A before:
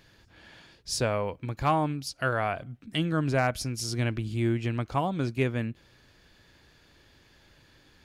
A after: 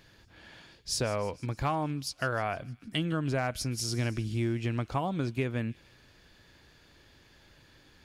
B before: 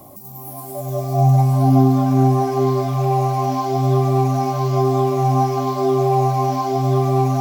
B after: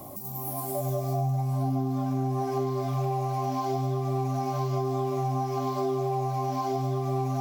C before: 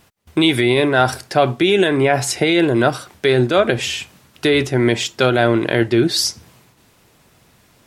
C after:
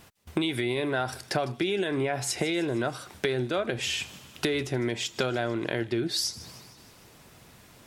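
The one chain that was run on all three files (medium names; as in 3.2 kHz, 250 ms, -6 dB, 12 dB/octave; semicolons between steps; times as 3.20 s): compression 6:1, threshold -26 dBFS; on a send: feedback echo behind a high-pass 154 ms, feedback 58%, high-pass 3.1 kHz, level -16.5 dB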